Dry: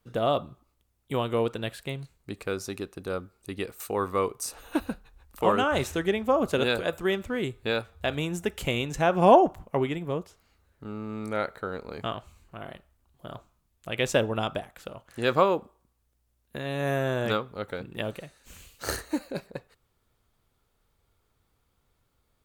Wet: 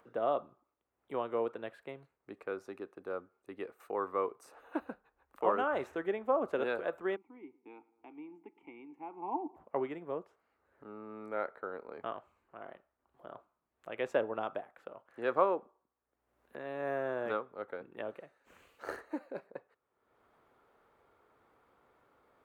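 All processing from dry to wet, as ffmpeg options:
-filter_complex "[0:a]asettb=1/sr,asplit=3[s0][s1][s2];[s0]atrim=end=7.164[s3];[s1]atrim=start=7.16:end=9.56,asetpts=PTS-STARTPTS,afade=t=in:d=0.004:c=qsin,afade=t=out:st=2.396:d=0.004:c=qsin,asplit=3[s4][s5][s6];[s4]bandpass=f=300:t=q:w=8,volume=1[s7];[s5]bandpass=f=870:t=q:w=8,volume=0.501[s8];[s6]bandpass=f=2240:t=q:w=8,volume=0.355[s9];[s7][s8][s9]amix=inputs=3:normalize=0,equalizer=f=4200:w=6:g=-15,asplit=2[s10][s11];[s11]adelay=108,lowpass=f=1800:p=1,volume=0.0891,asplit=2[s12][s13];[s13]adelay=108,lowpass=f=1800:p=1,volume=0.51,asplit=2[s14][s15];[s15]adelay=108,lowpass=f=1800:p=1,volume=0.51,asplit=2[s16][s17];[s17]adelay=108,lowpass=f=1800:p=1,volume=0.51[s18];[s10][s12][s14][s16][s18]amix=inputs=5:normalize=0,atrim=end_sample=105840[s19];[s2]atrim=start=9.556[s20];[s3][s19]acrossfade=d=0.004:c1=hsin:c2=qsin[s21];[s21][s20]acrossfade=d=0.004:c1=qsin:c2=hsin,highpass=f=120:p=1,acrossover=split=280 2000:gain=0.158 1 0.0794[s22][s23][s24];[s22][s23][s24]amix=inputs=3:normalize=0,acompressor=mode=upward:threshold=0.00398:ratio=2.5,volume=0.531"

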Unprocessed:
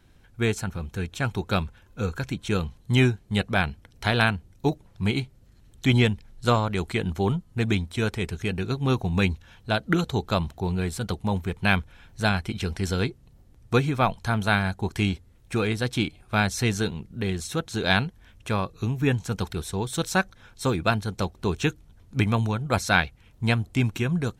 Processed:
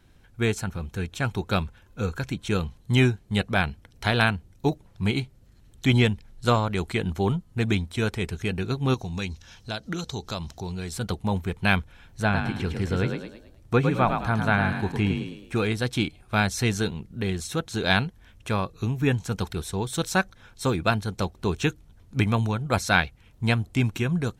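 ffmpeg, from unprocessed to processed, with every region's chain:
-filter_complex "[0:a]asettb=1/sr,asplit=3[s0][s1][s2];[s0]atrim=end=8.944[s3];[s1]atrim=start=8.94:end=10.93,asetpts=PTS-STARTPTS,afade=t=in:d=0.004:c=qsin,afade=t=out:st=1.986:d=0.004:c=qsin,equalizer=f=5600:t=o:w=0.99:g=14,acompressor=threshold=0.02:ratio=2:attack=3.2:release=140:knee=1:detection=peak[s4];[s2]atrim=start=10.926[s5];[s3][s4]acrossfade=d=0.004:c1=hsin:c2=qsin[s6];[s6][s5]acrossfade=d=0.004:c1=qsin:c2=hsin,asettb=1/sr,asplit=3[s7][s8][s9];[s7]atrim=end=12.224[s10];[s8]atrim=start=12.22:end=15.55,asetpts=PTS-STARTPTS,afade=t=in:d=0.004:c=qsin,afade=t=out:st=3.326:d=0.004:c=qsin,asplit=6[s11][s12][s13][s14][s15][s16];[s12]adelay=107,afreqshift=37,volume=0.501[s17];[s13]adelay=214,afreqshift=74,volume=0.191[s18];[s14]adelay=321,afreqshift=111,volume=0.0724[s19];[s15]adelay=428,afreqshift=148,volume=0.0275[s20];[s16]adelay=535,afreqshift=185,volume=0.0105[s21];[s11][s17][s18][s19][s20][s21]amix=inputs=6:normalize=0,atrim=end_sample=146853,acrossover=split=2800[s22][s23];[s23]acompressor=threshold=0.00562:ratio=4:attack=1:release=60[s24];[s22][s24]amix=inputs=2:normalize=0[s25];[s9]atrim=start=15.546[s26];[s10][s25]acrossfade=d=0.004:c1=hsin:c2=qsin[s27];[s27][s26]acrossfade=d=0.004:c1=qsin:c2=hsin"

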